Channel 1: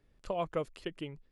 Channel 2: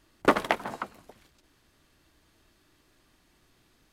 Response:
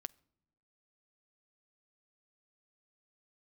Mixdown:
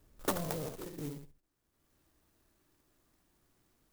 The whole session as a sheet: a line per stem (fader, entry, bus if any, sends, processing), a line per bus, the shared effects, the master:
+3.0 dB, 0.00 s, no send, echo send -6 dB, spectrogram pixelated in time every 100 ms; slew-rate limiter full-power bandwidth 3.8 Hz
-8.5 dB, 0.00 s, send -13 dB, no echo send, auto duck -22 dB, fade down 1.10 s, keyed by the first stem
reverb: on, pre-delay 6 ms
echo: feedback delay 68 ms, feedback 17%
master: sampling jitter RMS 0.11 ms

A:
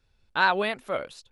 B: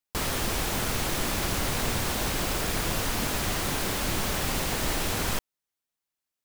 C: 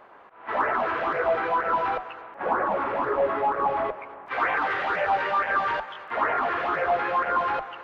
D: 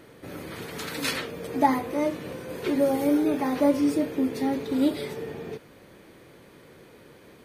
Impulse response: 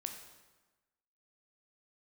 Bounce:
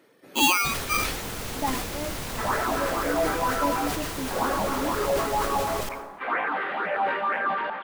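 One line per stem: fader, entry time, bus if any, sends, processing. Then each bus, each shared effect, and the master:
0.0 dB, 0.00 s, send -11 dB, resonant low shelf 340 Hz -9.5 dB, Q 1.5; spectral gate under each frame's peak -10 dB strong; polarity switched at an audio rate 1.8 kHz
-8.0 dB, 0.50 s, send -7.5 dB, none
-3.0 dB, 1.90 s, no send, low-pass 4.1 kHz 24 dB/octave; resonant low shelf 140 Hz -12.5 dB, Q 3
-8.0 dB, 0.00 s, no send, reverb removal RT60 0.52 s; high-pass 230 Hz 12 dB/octave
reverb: on, RT60 1.2 s, pre-delay 12 ms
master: decay stretcher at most 44 dB/s

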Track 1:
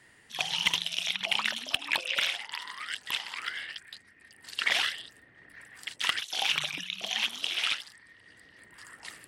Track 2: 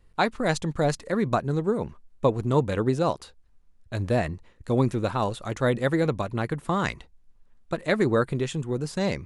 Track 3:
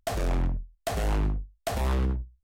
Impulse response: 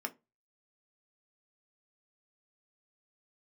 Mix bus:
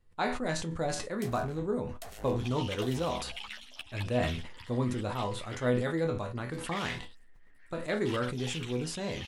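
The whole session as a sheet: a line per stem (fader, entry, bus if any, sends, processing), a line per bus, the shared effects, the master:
-11.0 dB, 2.05 s, no send, three-phase chorus
+1.5 dB, 0.00 s, no send, chord resonator E2 major, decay 0.23 s; decay stretcher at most 52 dB/s
-12.5 dB, 1.15 s, no send, tilt EQ +2 dB/octave; harmonic tremolo 6.5 Hz, depth 70%, crossover 2 kHz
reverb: none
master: none

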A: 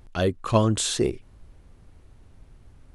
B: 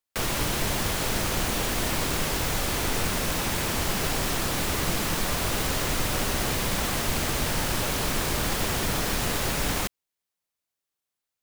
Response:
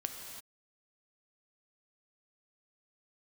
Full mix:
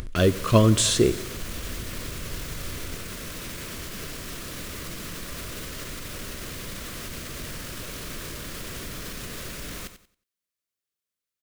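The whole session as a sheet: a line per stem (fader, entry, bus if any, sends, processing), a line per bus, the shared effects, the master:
+2.5 dB, 0.00 s, send -12 dB, echo send -20 dB, upward compressor, threshold -30 dBFS
-3.0 dB, 0.00 s, no send, echo send -11 dB, peak limiter -23.5 dBFS, peak gain reduction 10 dB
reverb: on, pre-delay 3 ms
echo: feedback delay 91 ms, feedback 26%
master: peaking EQ 820 Hz -15 dB 0.38 oct

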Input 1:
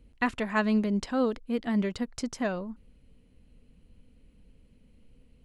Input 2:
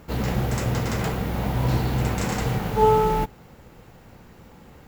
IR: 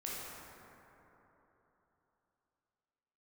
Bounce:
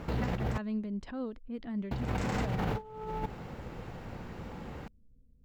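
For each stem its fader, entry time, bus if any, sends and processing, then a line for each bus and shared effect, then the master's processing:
-15.0 dB, 0.00 s, no send, level-controlled noise filter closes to 470 Hz, open at -24 dBFS; bass shelf 240 Hz +11 dB; swell ahead of each attack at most 130 dB/s
-1.0 dB, 0.00 s, muted 0.58–1.91 s, no send, treble shelf 8.1 kHz -10.5 dB; compressor with a negative ratio -28 dBFS, ratio -0.5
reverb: none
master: treble shelf 6.4 kHz -7 dB; peak limiter -22.5 dBFS, peak gain reduction 8.5 dB

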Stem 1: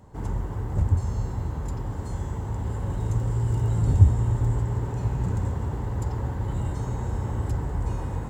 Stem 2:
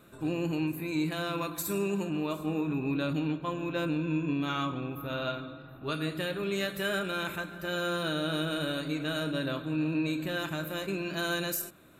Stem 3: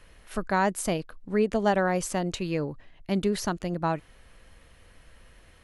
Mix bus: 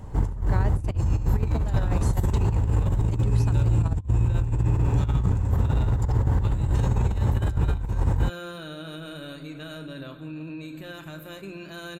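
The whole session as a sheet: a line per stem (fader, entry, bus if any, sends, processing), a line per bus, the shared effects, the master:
-0.5 dB, 0.00 s, no send, gain riding within 4 dB 0.5 s
-8.5 dB, 0.55 s, no send, hum notches 60/120/180/240/300 Hz; peak limiter -24.5 dBFS, peak gain reduction 4.5 dB
-11.5 dB, 0.00 s, no send, none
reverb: none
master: bass shelf 96 Hz +11 dB; compressor with a negative ratio -21 dBFS, ratio -0.5

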